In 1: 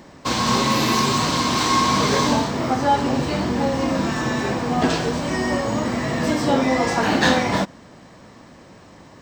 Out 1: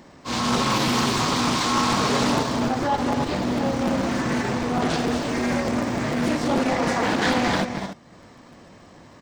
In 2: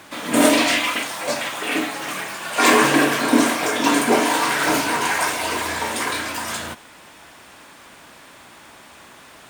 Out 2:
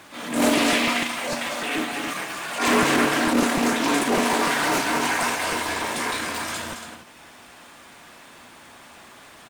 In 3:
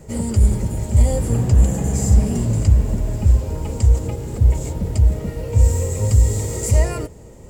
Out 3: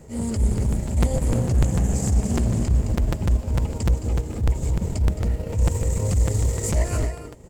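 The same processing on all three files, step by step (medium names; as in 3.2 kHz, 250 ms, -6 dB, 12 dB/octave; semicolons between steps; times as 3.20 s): loudspeakers at several distances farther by 74 m -8 dB, 97 m -10 dB; in parallel at -1.5 dB: peak limiter -9.5 dBFS; on the sum: feedback comb 240 Hz, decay 0.43 s, harmonics odd, mix 60%; transient shaper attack -9 dB, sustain -5 dB; crackling interface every 0.15 s, samples 256, repeat, from 0.57 s; loudspeaker Doppler distortion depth 0.33 ms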